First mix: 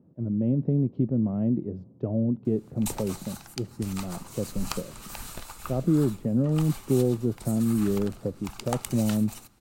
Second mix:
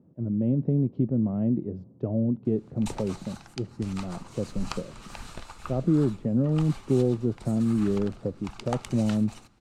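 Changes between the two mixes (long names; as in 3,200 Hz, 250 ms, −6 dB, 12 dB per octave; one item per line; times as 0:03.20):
speech: remove high-frequency loss of the air 90 metres
master: add high-frequency loss of the air 84 metres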